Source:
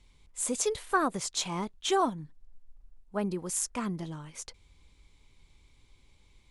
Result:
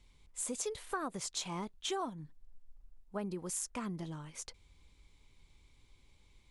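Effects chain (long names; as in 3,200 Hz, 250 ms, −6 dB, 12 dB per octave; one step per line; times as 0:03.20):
downward compressor 3 to 1, threshold −33 dBFS, peak gain reduction 10 dB
level −3 dB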